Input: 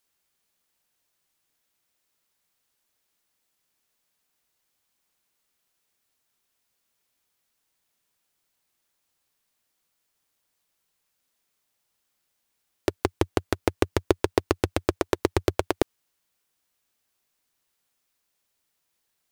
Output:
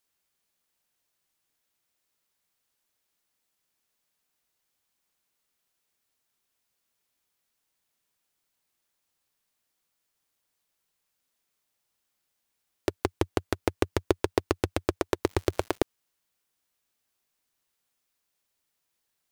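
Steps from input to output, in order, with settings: 15.24–15.77 s: crackle 220 per s -35 dBFS; trim -3 dB

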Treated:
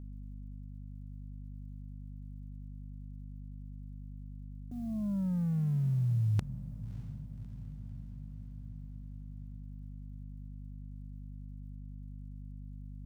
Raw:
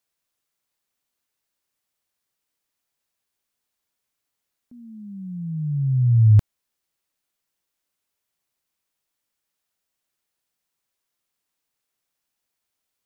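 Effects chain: companding laws mixed up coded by A; hum 50 Hz, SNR 25 dB; reverse; compression 8:1, threshold -38 dBFS, peak gain reduction 25.5 dB; reverse; wavefolder -28 dBFS; echo that smears into a reverb 606 ms, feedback 63%, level -15.5 dB; trim +9 dB

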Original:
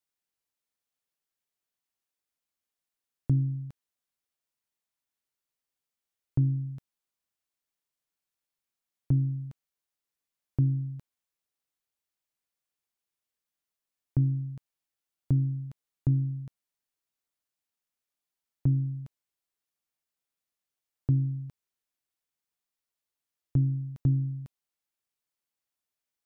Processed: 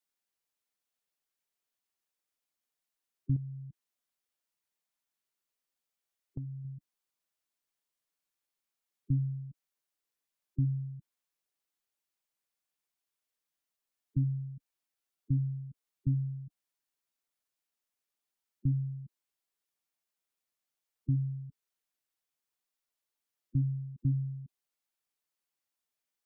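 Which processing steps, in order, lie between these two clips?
spectral gate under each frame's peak -15 dB strong; peaking EQ 78 Hz -6.5 dB 2.4 oct; 3.36–6.65 s: compression 4:1, threshold -39 dBFS, peak gain reduction 12 dB

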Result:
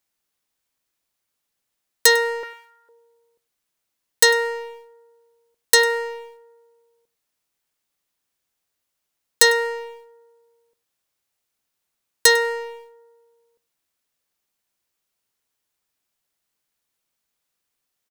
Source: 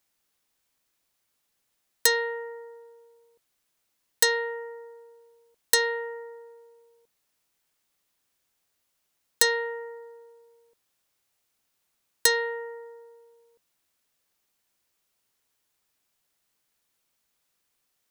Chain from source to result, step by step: waveshaping leveller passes 2; 2.43–2.89 s: resonant high-pass 1.4 kHz, resonance Q 5; delay 100 ms -19.5 dB; trim +1 dB

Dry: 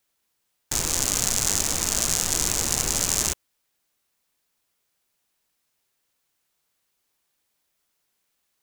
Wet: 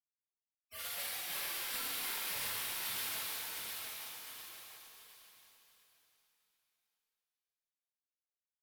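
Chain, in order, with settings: spectral gate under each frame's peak -30 dB weak; saturation -32 dBFS, distortion -19 dB; on a send: feedback delay 706 ms, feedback 43%, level -5 dB; on the sum: phaser 1.7 Hz, delay 2.9 ms, feedback 53%; low-pass 12 kHz 12 dB/octave; waveshaping leveller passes 2; pitch-shifted reverb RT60 2.7 s, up +7 st, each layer -8 dB, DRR -8.5 dB

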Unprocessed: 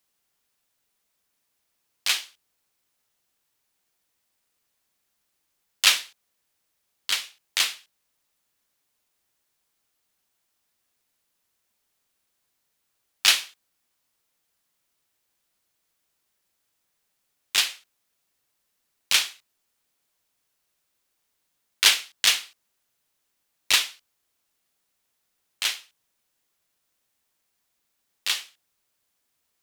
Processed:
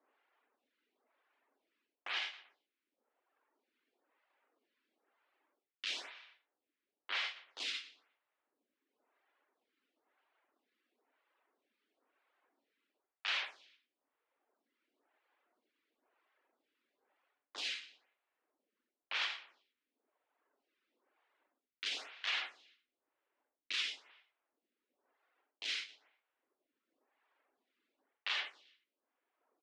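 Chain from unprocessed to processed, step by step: steep high-pass 250 Hz 48 dB/octave; reverse; compression 6:1, threshold -32 dBFS, peak gain reduction 19 dB; reverse; reverb removal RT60 1.5 s; feedback delay 119 ms, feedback 42%, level -20 dB; level-controlled noise filter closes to 2.5 kHz, open at -33.5 dBFS; tape spacing loss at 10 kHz 40 dB; gated-style reverb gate 110 ms rising, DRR 10.5 dB; peak limiter -43 dBFS, peak gain reduction 11.5 dB; treble shelf 2.2 kHz +10 dB; lamp-driven phase shifter 1 Hz; trim +12.5 dB

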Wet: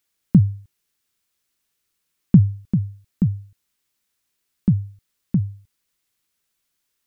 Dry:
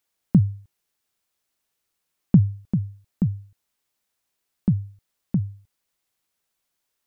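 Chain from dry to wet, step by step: peaking EQ 710 Hz -7.5 dB 1.2 oct; trim +3.5 dB

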